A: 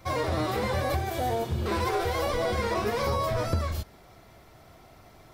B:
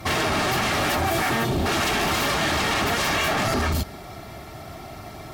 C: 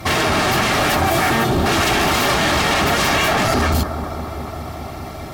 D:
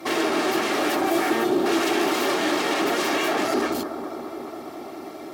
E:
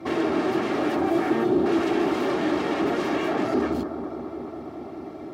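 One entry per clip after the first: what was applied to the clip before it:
sine folder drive 16 dB, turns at -14 dBFS; notch comb 500 Hz; gain -4.5 dB
analogue delay 0.207 s, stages 2048, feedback 81%, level -11 dB; gain +5.5 dB
resonant high-pass 330 Hz, resonance Q 3.4; gain -8.5 dB
RIAA curve playback; gain -4 dB

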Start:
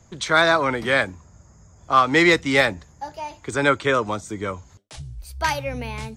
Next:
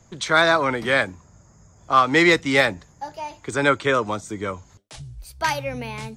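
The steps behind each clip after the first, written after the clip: bell 69 Hz -13.5 dB 0.3 oct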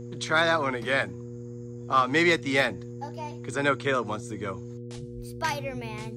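buzz 120 Hz, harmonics 4, -33 dBFS -3 dB/oct; gain -6 dB

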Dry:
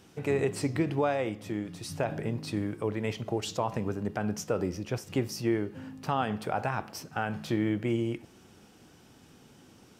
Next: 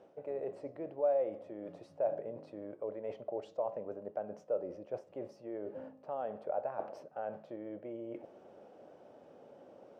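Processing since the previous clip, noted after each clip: reverse; compressor 5:1, threshold -40 dBFS, peak gain reduction 16 dB; reverse; band-pass 580 Hz, Q 6.5; gain +15.5 dB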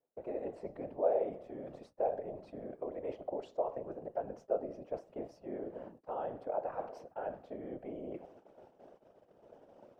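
gate -55 dBFS, range -29 dB; whisperiser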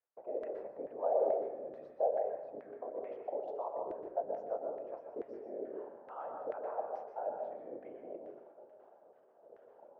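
LFO band-pass saw down 2.3 Hz 400–1800 Hz; plate-style reverb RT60 0.86 s, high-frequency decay 0.4×, pre-delay 0.11 s, DRR 3.5 dB; gain +3 dB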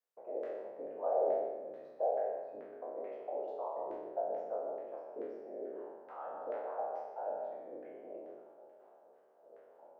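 spectral trails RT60 1.00 s; HPF 220 Hz 6 dB/oct; gain -3 dB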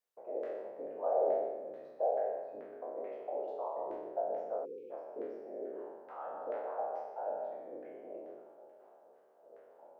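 spectral delete 4.65–4.91, 530–2200 Hz; gain +1 dB

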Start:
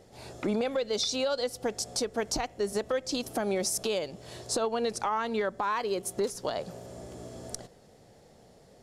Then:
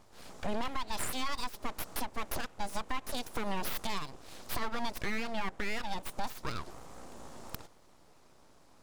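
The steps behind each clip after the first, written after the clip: full-wave rectifier; gain -2.5 dB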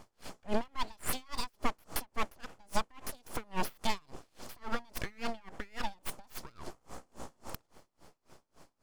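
notch 3800 Hz, Q 18; dB-linear tremolo 3.6 Hz, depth 33 dB; gain +6.5 dB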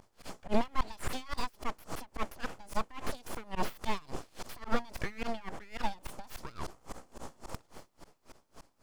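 auto swell 0.134 s; slew limiter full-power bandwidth 17 Hz; gain +8.5 dB

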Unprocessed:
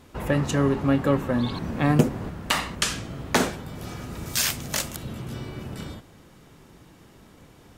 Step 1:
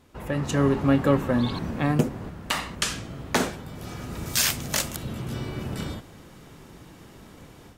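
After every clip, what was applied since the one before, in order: AGC gain up to 10.5 dB; gain -6.5 dB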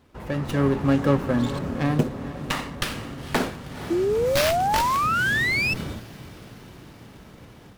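diffused feedback echo 0.485 s, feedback 60%, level -13 dB; painted sound rise, 3.9–5.74, 330–2700 Hz -22 dBFS; running maximum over 5 samples

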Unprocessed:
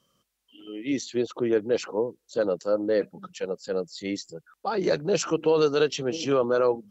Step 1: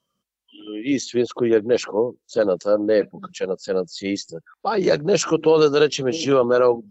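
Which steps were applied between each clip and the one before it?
spectral noise reduction 14 dB; gain +6 dB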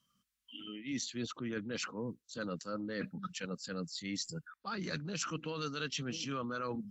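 band shelf 550 Hz -14.5 dB; reverse; compressor 5:1, threshold -37 dBFS, peak gain reduction 16 dB; reverse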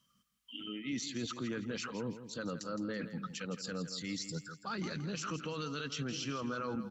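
limiter -33 dBFS, peak gain reduction 10.5 dB; feedback echo 0.165 s, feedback 37%, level -11.5 dB; gain +3 dB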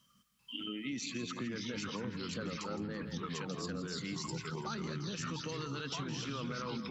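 echoes that change speed 0.392 s, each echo -3 st, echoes 2; compressor, threshold -41 dBFS, peak gain reduction 10 dB; gain +4.5 dB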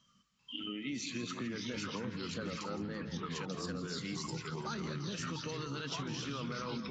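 wow and flutter 26 cents; AAC 32 kbps 16000 Hz

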